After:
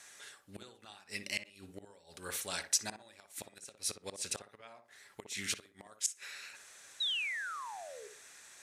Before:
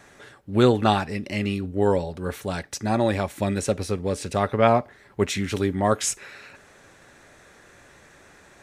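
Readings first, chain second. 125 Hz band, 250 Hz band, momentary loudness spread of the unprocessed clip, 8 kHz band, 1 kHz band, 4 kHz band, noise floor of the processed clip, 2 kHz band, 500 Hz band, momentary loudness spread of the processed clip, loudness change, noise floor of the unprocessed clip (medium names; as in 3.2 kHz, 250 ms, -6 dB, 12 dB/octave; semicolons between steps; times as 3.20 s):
-30.5 dB, -29.0 dB, 11 LU, -3.5 dB, -21.5 dB, -3.5 dB, -66 dBFS, -7.5 dB, -27.0 dB, 22 LU, -13.5 dB, -53 dBFS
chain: inverted gate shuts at -14 dBFS, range -24 dB; low-pass 11 kHz 12 dB/octave; painted sound fall, 7.00–8.08 s, 390–4000 Hz -33 dBFS; pre-emphasis filter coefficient 0.97; on a send: tape echo 60 ms, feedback 35%, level -6 dB, low-pass 1.1 kHz; on the sum: trim +6 dB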